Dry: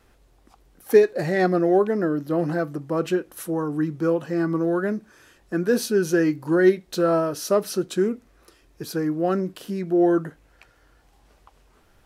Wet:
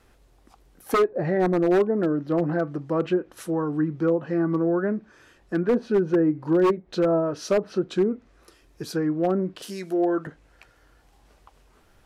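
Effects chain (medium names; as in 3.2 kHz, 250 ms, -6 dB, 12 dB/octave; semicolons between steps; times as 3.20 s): 9.62–10.27 s: RIAA curve recording; low-pass that closes with the level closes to 850 Hz, closed at -17 dBFS; 4.71–5.74 s: treble shelf 5.6 kHz -8 dB; wavefolder -13.5 dBFS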